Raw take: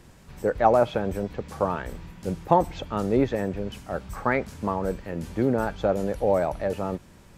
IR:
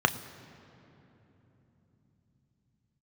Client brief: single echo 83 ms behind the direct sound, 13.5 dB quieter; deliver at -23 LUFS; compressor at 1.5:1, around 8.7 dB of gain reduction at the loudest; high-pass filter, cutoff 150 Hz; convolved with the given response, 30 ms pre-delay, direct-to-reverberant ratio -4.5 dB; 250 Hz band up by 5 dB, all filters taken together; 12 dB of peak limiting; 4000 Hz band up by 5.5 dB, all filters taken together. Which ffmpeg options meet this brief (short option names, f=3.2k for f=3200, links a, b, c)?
-filter_complex "[0:a]highpass=150,equalizer=f=250:t=o:g=7,equalizer=f=4k:t=o:g=7,acompressor=threshold=-37dB:ratio=1.5,alimiter=limit=-23.5dB:level=0:latency=1,aecho=1:1:83:0.211,asplit=2[a][b];[1:a]atrim=start_sample=2205,adelay=30[c];[b][c]afir=irnorm=-1:irlink=0,volume=-9dB[d];[a][d]amix=inputs=2:normalize=0,volume=6.5dB"